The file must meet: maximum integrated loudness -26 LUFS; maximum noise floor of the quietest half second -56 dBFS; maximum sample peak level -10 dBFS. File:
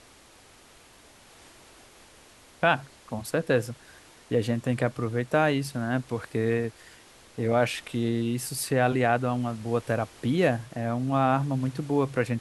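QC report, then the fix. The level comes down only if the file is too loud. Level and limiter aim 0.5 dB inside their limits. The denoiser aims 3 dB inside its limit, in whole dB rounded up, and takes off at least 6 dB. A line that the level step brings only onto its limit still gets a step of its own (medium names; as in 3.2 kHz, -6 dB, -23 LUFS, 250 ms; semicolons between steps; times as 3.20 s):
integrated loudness -27.0 LUFS: pass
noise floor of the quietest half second -54 dBFS: fail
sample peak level -8.5 dBFS: fail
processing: noise reduction 6 dB, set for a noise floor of -54 dBFS; peak limiter -10.5 dBFS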